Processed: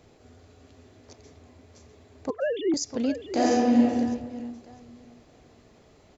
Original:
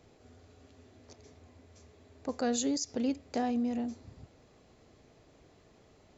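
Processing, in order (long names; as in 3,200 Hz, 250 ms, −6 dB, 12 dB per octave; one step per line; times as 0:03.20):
0:02.30–0:02.74: three sine waves on the formant tracks
repeating echo 652 ms, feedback 21%, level −10 dB
0:03.32–0:03.94: thrown reverb, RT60 1.5 s, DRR −6 dB
level +4.5 dB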